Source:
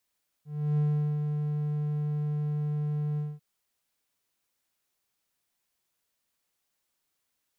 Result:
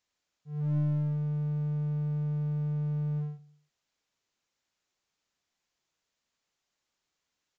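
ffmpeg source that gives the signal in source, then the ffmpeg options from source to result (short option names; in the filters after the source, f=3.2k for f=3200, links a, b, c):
-f lavfi -i "aevalsrc='0.1*(1-4*abs(mod(149*t+0.25,1)-0.5))':d=2.946:s=44100,afade=t=in:d=0.326,afade=t=out:st=0.326:d=0.398:silence=0.562,afade=t=out:st=2.73:d=0.216"
-filter_complex "[0:a]aresample=16000,aeval=exprs='clip(val(0),-1,0.0422)':c=same,aresample=44100,asplit=2[a][b];[b]adelay=102,lowpass=f=860:p=1,volume=-17dB,asplit=2[c][d];[d]adelay=102,lowpass=f=860:p=1,volume=0.4,asplit=2[e][f];[f]adelay=102,lowpass=f=860:p=1,volume=0.4[g];[a][c][e][g]amix=inputs=4:normalize=0"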